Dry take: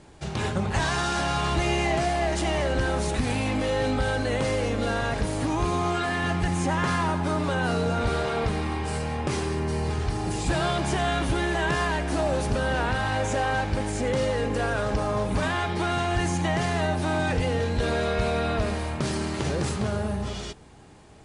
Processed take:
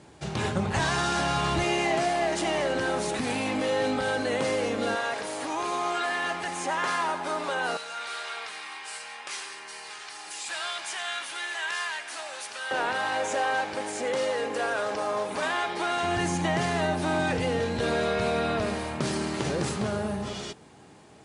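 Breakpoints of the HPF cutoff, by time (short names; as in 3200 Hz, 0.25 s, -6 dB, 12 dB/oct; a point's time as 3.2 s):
97 Hz
from 1.64 s 220 Hz
from 4.95 s 500 Hz
from 7.77 s 1500 Hz
from 12.71 s 410 Hz
from 16.03 s 140 Hz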